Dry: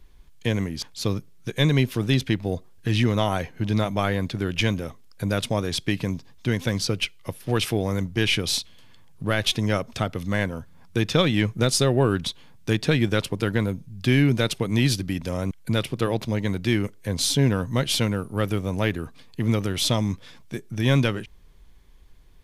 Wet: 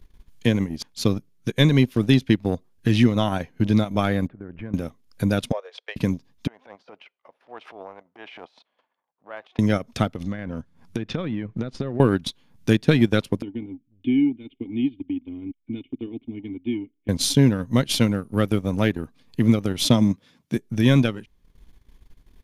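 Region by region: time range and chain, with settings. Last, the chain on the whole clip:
4.27–4.74 LPF 1700 Hz 24 dB/oct + compressor 2.5:1, threshold -40 dBFS
5.52–5.96 steep high-pass 460 Hz 72 dB/oct + tape spacing loss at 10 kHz 31 dB
6.47–9.59 transient shaper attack -8 dB, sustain +10 dB + ladder band-pass 890 Hz, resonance 35%
10.09–12 treble ducked by the level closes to 2000 Hz, closed at -17.5 dBFS + compressor, threshold -27 dBFS
13.42–17.09 vocal tract filter i + low shelf 350 Hz -6 dB + comb 2.8 ms, depth 74%
19.85–20.57 HPF 140 Hz + low shelf 220 Hz +7.5 dB
whole clip: bell 240 Hz +6.5 dB 0.84 oct; notch 7900 Hz, Q 20; transient shaper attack +3 dB, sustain -11 dB

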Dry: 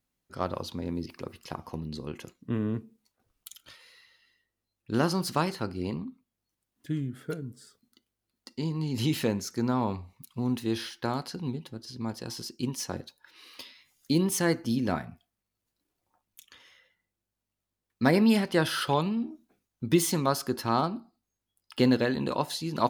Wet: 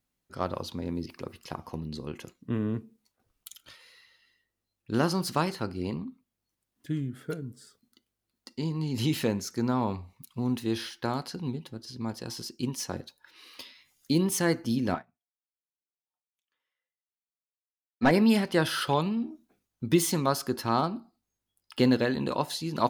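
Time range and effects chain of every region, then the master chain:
14.94–18.11 overdrive pedal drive 21 dB, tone 1200 Hz, clips at -10 dBFS + upward expander 2.5:1, over -43 dBFS
whole clip: dry

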